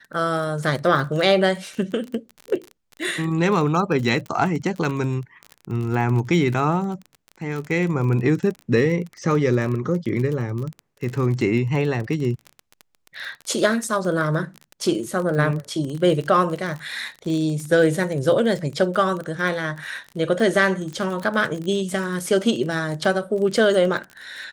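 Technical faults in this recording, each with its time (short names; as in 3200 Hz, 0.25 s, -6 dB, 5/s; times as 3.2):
crackle 28/s -27 dBFS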